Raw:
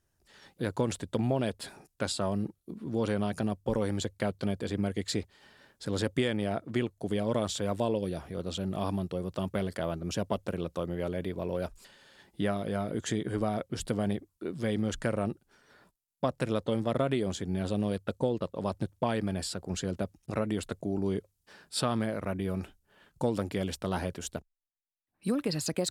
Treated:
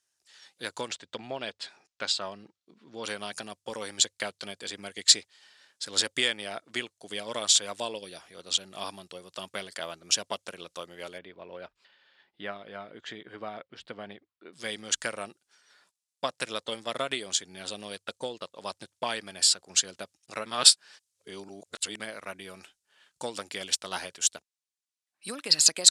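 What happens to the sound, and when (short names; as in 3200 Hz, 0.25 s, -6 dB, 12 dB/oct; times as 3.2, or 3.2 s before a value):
0.88–3.04 air absorption 130 m
11.18–14.53 air absorption 370 m
20.46–22 reverse
whole clip: weighting filter ITU-R 468; upward expander 1.5:1, over -44 dBFS; gain +7 dB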